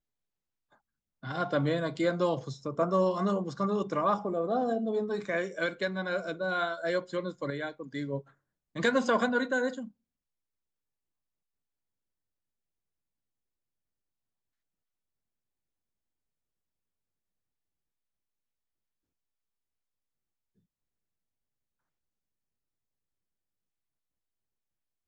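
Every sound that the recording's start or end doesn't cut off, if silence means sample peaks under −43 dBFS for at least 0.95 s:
0:01.23–0:09.88

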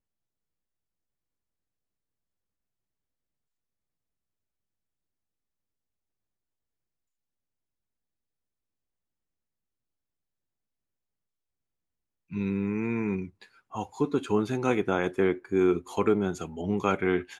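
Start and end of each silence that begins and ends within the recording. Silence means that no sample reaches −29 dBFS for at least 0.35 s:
0:13.25–0:13.76

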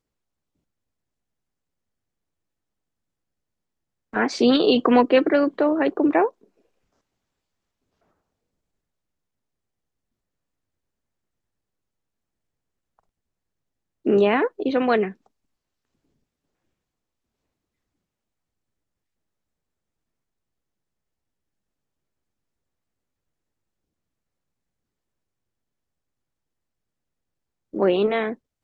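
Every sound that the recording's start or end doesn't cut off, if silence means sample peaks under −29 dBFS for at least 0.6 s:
0:04.13–0:06.29
0:14.06–0:15.10

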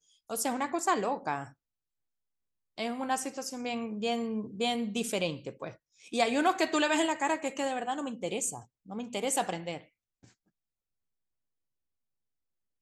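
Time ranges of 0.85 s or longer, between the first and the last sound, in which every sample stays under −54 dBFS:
0:01.52–0:02.78

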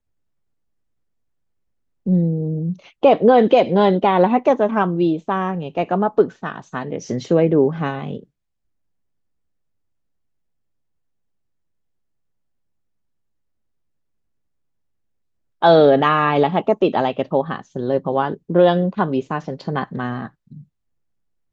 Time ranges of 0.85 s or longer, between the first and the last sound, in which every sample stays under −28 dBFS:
0:08.19–0:15.62

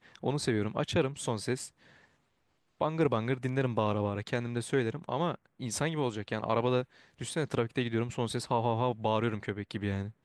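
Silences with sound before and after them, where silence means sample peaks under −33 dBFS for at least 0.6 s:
0:01.65–0:02.81

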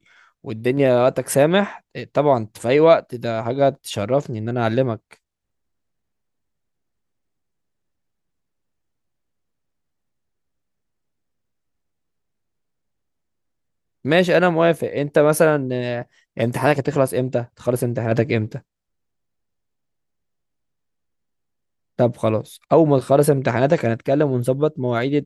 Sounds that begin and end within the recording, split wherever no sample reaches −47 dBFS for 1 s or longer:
0:14.05–0:18.61

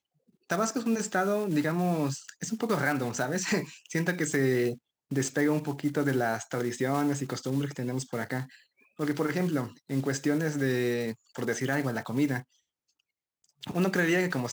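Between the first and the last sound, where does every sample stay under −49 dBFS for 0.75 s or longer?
0:12.43–0:13.44

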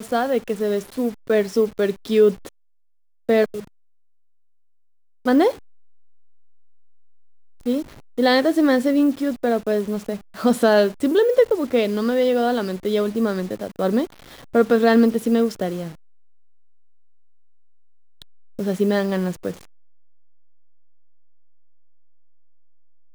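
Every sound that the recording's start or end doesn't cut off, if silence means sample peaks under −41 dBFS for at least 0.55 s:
0:03.29–0:03.67
0:05.25–0:05.59
0:07.60–0:15.95
0:18.22–0:19.65

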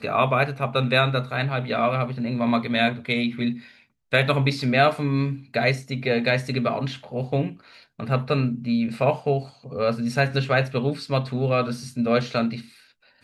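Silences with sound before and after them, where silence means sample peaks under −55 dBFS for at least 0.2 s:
0:03.85–0:04.12

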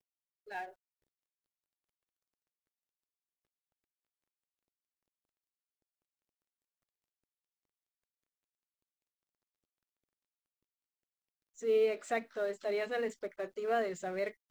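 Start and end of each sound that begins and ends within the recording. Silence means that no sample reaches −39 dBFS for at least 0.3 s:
0:00.52–0:00.65

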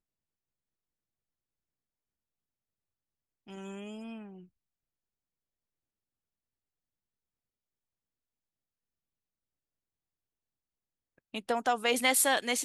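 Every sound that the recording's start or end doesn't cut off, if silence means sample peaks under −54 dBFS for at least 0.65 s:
0:03.47–0:04.46

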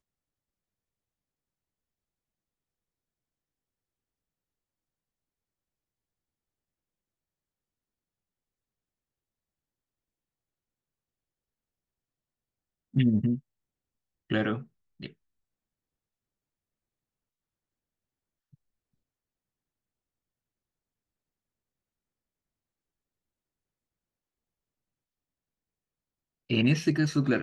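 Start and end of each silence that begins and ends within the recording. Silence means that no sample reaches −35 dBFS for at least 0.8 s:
0:13.37–0:14.30
0:15.06–0:26.50

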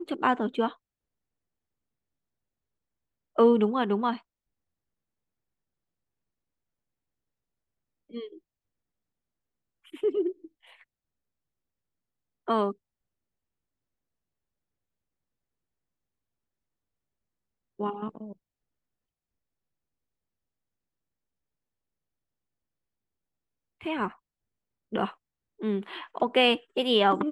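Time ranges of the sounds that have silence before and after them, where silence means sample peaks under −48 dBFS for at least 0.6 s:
0:03.36–0:04.20
0:08.10–0:08.38
0:09.85–0:10.81
0:12.47–0:12.73
0:17.79–0:18.33
0:23.81–0:24.15

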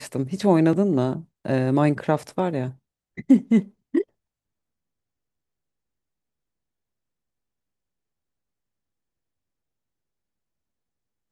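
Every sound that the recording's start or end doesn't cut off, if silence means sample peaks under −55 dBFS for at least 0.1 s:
0:01.45–0:02.79
0:03.17–0:03.71
0:03.94–0:04.04

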